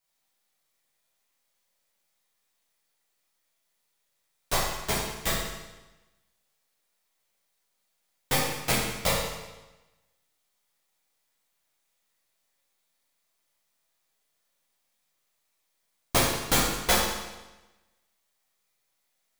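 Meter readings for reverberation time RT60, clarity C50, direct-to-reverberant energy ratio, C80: 1.1 s, 0.5 dB, -8.5 dB, 3.0 dB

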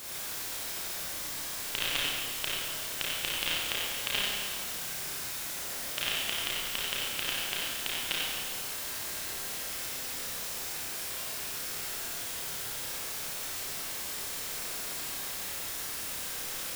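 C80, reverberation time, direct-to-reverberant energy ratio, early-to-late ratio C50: -1.5 dB, 1.6 s, -7.0 dB, -4.0 dB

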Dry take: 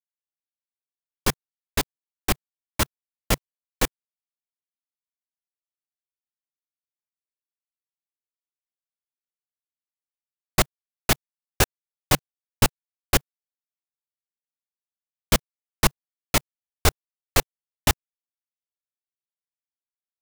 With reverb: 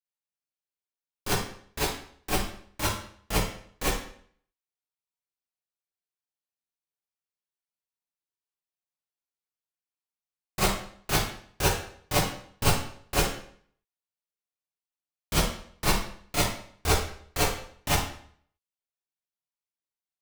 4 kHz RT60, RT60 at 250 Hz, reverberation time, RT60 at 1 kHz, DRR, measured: 0.50 s, 0.60 s, 0.60 s, 0.55 s, -12.5 dB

